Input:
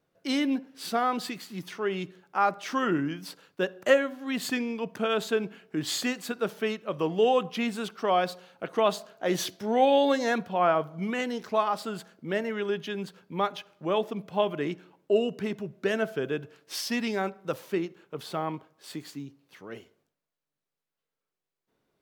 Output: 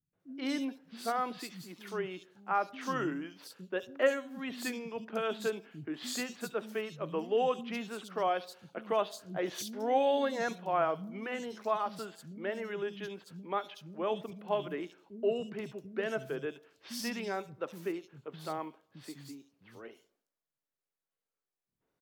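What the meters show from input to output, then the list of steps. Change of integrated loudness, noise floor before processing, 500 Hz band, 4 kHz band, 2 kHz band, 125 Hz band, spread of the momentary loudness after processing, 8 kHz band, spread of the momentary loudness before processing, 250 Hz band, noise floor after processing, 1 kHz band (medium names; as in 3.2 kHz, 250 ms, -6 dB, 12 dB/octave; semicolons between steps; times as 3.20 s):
-6.5 dB, under -85 dBFS, -6.5 dB, -8.5 dB, -6.5 dB, -8.5 dB, 16 LU, -6.5 dB, 14 LU, -8.5 dB, under -85 dBFS, -6.0 dB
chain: three bands offset in time lows, mids, highs 130/200 ms, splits 210/3500 Hz; trim -6 dB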